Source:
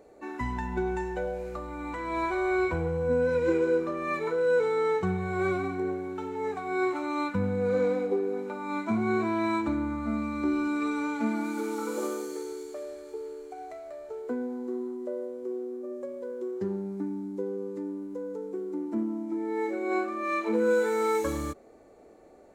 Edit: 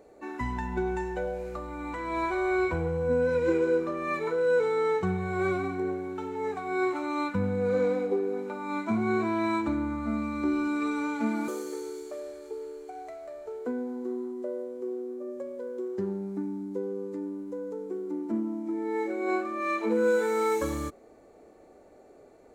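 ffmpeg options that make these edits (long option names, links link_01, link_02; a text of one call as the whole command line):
ffmpeg -i in.wav -filter_complex "[0:a]asplit=2[link_01][link_02];[link_01]atrim=end=11.482[link_03];[link_02]atrim=start=12.108[link_04];[link_03][link_04]acrossfade=duration=0.004:curve1=hsin:curve2=hsin" out.wav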